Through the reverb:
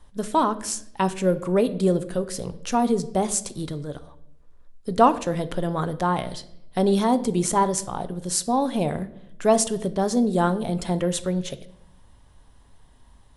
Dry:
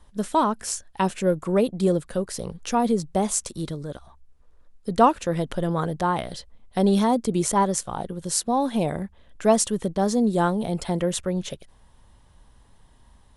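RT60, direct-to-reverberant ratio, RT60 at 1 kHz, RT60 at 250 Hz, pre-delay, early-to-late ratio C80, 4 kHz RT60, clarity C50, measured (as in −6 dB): 0.80 s, 12.0 dB, 0.65 s, 1.1 s, 3 ms, 18.5 dB, 0.60 s, 16.5 dB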